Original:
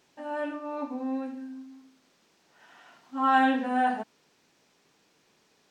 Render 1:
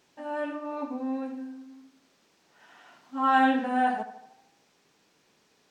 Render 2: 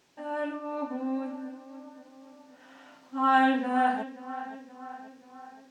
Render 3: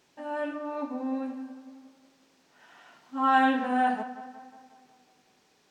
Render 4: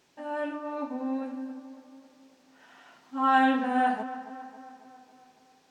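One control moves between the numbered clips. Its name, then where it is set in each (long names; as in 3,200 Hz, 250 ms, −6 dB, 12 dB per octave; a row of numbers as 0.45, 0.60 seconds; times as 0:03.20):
tape delay, delay time: 75, 528, 182, 275 milliseconds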